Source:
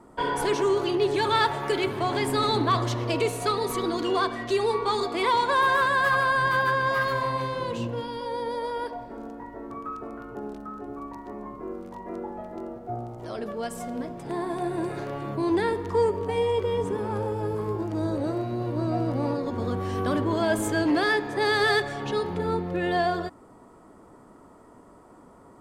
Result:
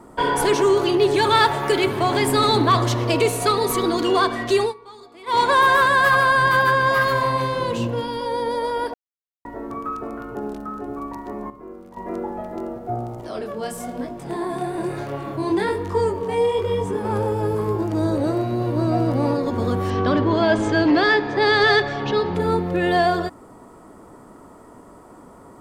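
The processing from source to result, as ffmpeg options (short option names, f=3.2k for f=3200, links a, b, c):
-filter_complex "[0:a]asettb=1/sr,asplit=3[a][b][c];[a]atrim=end=13.214[d];[b]atrim=start=13.21:end=17.05,asetpts=PTS-STARTPTS,afade=t=in:d=0.004:c=qsin,afade=t=out:st=3.836:d=0.004:c=qsin,flanger=delay=20:depth=8:speed=1.1[e];[c]atrim=start=17.046[f];[d][e]acrossfade=d=0.004:c1=hsin:c2=qsin[g];[g][f]acrossfade=d=0.004:c1=qsin:c2=hsin,asettb=1/sr,asplit=3[h][i][j];[h]atrim=end=19.904[k];[i]atrim=start=19.9:end=22.35,asetpts=PTS-STARTPTS,afade=t=in:d=0.004:c=qsin,afade=t=out:st=2.446:d=0.004:c=qsin,lowpass=f=5.4k:w=0.5412,lowpass=f=5.4k:w=1.3066[l];[j]atrim=start=22.346[m];[k][l]acrossfade=d=0.004:c1=hsin:c2=qsin[n];[n][m]acrossfade=d=0.004:c1=qsin:c2=hsin,asplit=7[o][p][q][r][s][t][u];[o]atrim=end=4.74,asetpts=PTS-STARTPTS,afade=t=out:st=4.61:d=0.13:silence=0.0668344[v];[p]atrim=start=4.74:end=5.26,asetpts=PTS-STARTPTS,volume=-23.5dB[w];[q]atrim=start=5.26:end=8.94,asetpts=PTS-STARTPTS,afade=t=in:d=0.13:silence=0.0668344,afade=t=out:st=3.676:d=0.004:c=hsin[x];[r]atrim=start=8.94:end=9.45,asetpts=PTS-STARTPTS,volume=0[y];[s]atrim=start=9.45:end=11.502,asetpts=PTS-STARTPTS,afade=t=in:d=0.004:c=hsin[z];[t]atrim=start=11.498:end=11.972,asetpts=PTS-STARTPTS,volume=-9.5dB[aa];[u]atrim=start=11.968[ab];[v][w][x][y][z]concat=n=5:v=0:a=1[ac];[ac][aa]acrossfade=d=0.004:c1=hsin:c2=hsin[ad];[ad][ab]acrossfade=d=0.004:c1=hsin:c2=hsin,acontrast=67,highshelf=f=11k:g=7.5"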